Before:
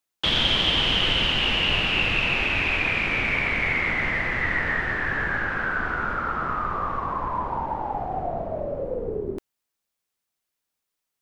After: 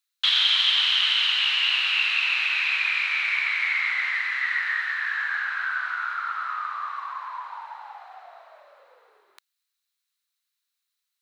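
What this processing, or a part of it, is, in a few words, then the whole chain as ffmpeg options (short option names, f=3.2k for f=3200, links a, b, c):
headphones lying on a table: -filter_complex "[0:a]highpass=f=1.2k:w=0.5412,highpass=f=1.2k:w=1.3066,equalizer=f=4k:t=o:w=0.23:g=10.5,asettb=1/sr,asplit=3[a][b][c];[a]atrim=end=4.214[d];[b]atrim=start=4.21:end=5.18,asetpts=PTS-STARTPTS,afade=t=in:d=0.004:c=qsin,afade=t=out:st=0.966:d=0.004:c=qsin,highpass=770[e];[c]atrim=start=5.176[f];[d][e]acrossfade=d=0.004:c1=hsin:c2=qsin[g];[g][f]acrossfade=d=0.004:c1=qsin:c2=hsin"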